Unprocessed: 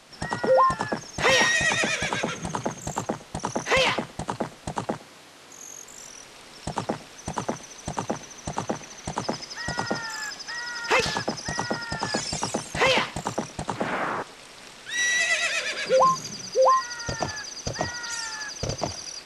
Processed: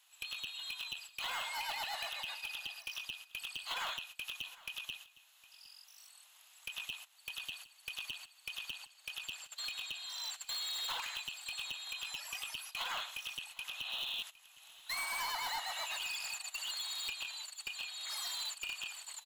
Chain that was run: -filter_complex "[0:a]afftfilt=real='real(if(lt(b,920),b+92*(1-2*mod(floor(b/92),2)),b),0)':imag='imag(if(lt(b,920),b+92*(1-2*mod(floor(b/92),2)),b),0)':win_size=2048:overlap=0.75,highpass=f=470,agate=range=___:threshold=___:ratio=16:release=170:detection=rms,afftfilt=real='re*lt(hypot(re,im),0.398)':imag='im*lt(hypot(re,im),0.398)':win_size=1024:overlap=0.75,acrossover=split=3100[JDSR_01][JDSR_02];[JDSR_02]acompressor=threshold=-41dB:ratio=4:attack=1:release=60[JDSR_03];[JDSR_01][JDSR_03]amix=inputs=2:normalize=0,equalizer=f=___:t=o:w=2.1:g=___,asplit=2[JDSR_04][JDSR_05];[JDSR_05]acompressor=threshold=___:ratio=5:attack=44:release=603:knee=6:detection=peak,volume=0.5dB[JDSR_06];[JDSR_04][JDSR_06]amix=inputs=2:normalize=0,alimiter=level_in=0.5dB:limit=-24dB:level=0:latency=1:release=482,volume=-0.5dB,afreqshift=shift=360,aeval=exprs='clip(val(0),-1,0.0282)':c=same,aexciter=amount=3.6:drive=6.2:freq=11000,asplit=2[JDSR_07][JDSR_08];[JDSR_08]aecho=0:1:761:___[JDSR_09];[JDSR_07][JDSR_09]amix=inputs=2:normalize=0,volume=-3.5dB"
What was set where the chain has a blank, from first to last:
-18dB, -34dB, 1300, -3.5, -45dB, 0.1